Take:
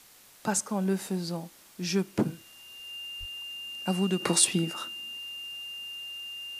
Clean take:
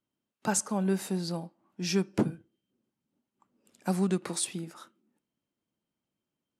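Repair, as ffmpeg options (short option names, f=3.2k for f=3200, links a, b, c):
-filter_complex "[0:a]bandreject=f=2.8k:w=30,asplit=3[a][b][c];[a]afade=t=out:st=3.19:d=0.02[d];[b]highpass=f=140:w=0.5412,highpass=f=140:w=1.3066,afade=t=in:st=3.19:d=0.02,afade=t=out:st=3.31:d=0.02[e];[c]afade=t=in:st=3.31:d=0.02[f];[d][e][f]amix=inputs=3:normalize=0,afwtdn=0.002,asetnsamples=n=441:p=0,asendcmd='4.2 volume volume -9.5dB',volume=0dB"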